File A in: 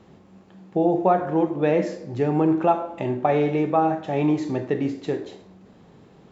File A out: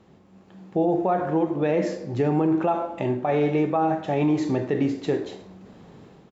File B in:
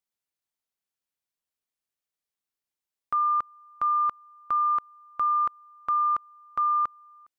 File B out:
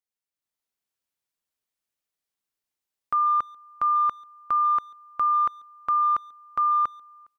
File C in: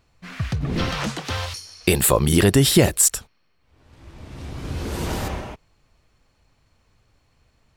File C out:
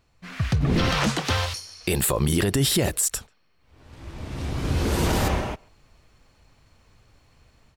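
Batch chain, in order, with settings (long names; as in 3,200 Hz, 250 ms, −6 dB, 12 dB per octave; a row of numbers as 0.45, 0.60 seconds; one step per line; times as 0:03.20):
automatic gain control gain up to 7.5 dB
brickwall limiter −10 dBFS
far-end echo of a speakerphone 140 ms, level −26 dB
loudness normalisation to −24 LKFS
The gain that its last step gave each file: −4.0, −5.5, −2.5 decibels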